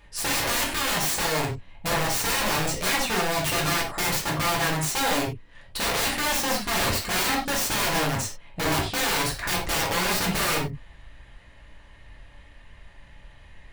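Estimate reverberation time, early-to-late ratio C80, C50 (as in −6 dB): non-exponential decay, 12.0 dB, 5.5 dB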